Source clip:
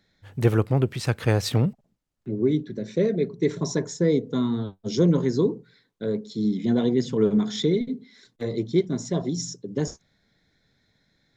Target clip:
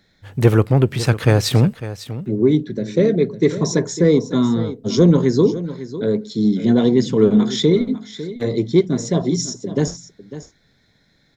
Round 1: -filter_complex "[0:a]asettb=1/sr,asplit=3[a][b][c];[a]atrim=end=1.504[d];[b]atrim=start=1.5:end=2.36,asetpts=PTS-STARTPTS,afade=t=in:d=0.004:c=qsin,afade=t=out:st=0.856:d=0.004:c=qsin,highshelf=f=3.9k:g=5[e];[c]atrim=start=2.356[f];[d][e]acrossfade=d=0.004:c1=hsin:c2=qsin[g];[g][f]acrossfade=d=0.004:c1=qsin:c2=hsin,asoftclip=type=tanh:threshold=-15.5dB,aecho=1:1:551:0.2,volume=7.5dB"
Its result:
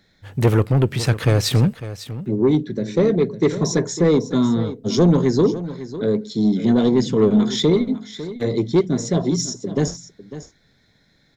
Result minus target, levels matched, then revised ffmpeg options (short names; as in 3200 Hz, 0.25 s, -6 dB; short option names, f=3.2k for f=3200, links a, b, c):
soft clip: distortion +14 dB
-filter_complex "[0:a]asettb=1/sr,asplit=3[a][b][c];[a]atrim=end=1.504[d];[b]atrim=start=1.5:end=2.36,asetpts=PTS-STARTPTS,afade=t=in:d=0.004:c=qsin,afade=t=out:st=0.856:d=0.004:c=qsin,highshelf=f=3.9k:g=5[e];[c]atrim=start=2.356[f];[d][e]acrossfade=d=0.004:c1=hsin:c2=qsin[g];[g][f]acrossfade=d=0.004:c1=qsin:c2=hsin,asoftclip=type=tanh:threshold=-6dB,aecho=1:1:551:0.2,volume=7.5dB"